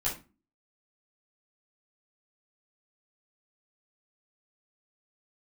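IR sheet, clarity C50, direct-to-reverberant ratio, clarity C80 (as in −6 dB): 8.5 dB, −10.0 dB, 16.0 dB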